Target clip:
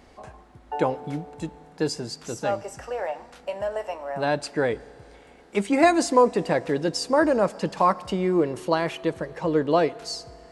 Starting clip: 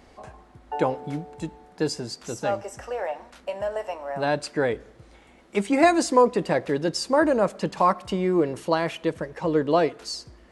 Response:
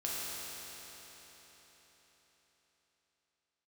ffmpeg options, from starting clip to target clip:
-filter_complex "[0:a]asplit=2[s0][s1];[s1]equalizer=f=820:t=o:w=0.28:g=9.5[s2];[1:a]atrim=start_sample=2205,adelay=143[s3];[s2][s3]afir=irnorm=-1:irlink=0,volume=0.0398[s4];[s0][s4]amix=inputs=2:normalize=0"

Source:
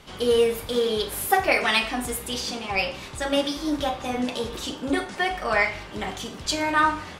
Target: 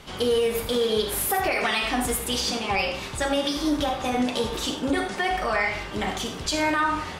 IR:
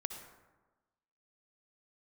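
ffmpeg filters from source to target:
-filter_complex "[0:a]alimiter=limit=0.119:level=0:latency=1:release=75[s0];[1:a]atrim=start_sample=2205,afade=t=out:st=0.15:d=0.01,atrim=end_sample=7056[s1];[s0][s1]afir=irnorm=-1:irlink=0,volume=1.78"

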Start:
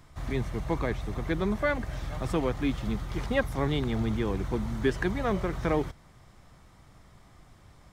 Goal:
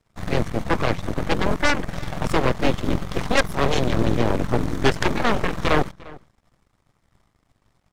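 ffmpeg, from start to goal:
-filter_complex "[0:a]aeval=exprs='0.251*(cos(1*acos(clip(val(0)/0.251,-1,1)))-cos(1*PI/2))+0.0316*(cos(7*acos(clip(val(0)/0.251,-1,1)))-cos(7*PI/2))+0.0708*(cos(8*acos(clip(val(0)/0.251,-1,1)))-cos(8*PI/2))':c=same,asplit=2[s0][s1];[s1]adelay=349.9,volume=0.0891,highshelf=f=4000:g=-7.87[s2];[s0][s2]amix=inputs=2:normalize=0,volume=1.88"

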